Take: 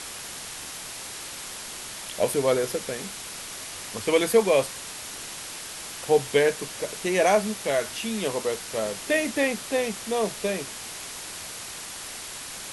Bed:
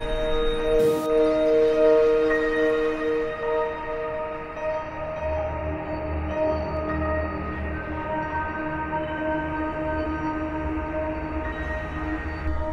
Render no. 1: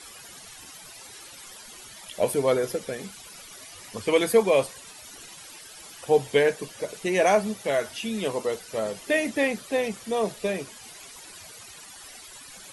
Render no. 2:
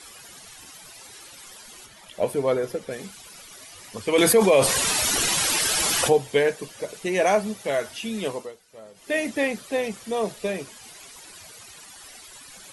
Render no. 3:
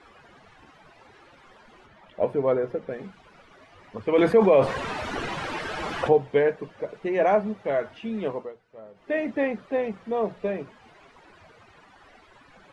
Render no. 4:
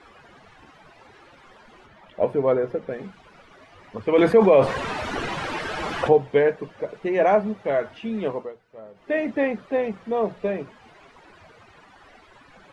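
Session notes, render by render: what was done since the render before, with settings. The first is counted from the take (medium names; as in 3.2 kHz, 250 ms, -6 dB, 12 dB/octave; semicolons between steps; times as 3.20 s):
noise reduction 14 dB, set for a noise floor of -38 dBFS
1.86–2.91 s: treble shelf 3.3 kHz -7.5 dB; 4.18–6.13 s: level flattener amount 70%; 8.28–9.19 s: dip -16 dB, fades 0.25 s
low-pass 1.6 kHz 12 dB/octave; hum notches 60/120/180 Hz
trim +2.5 dB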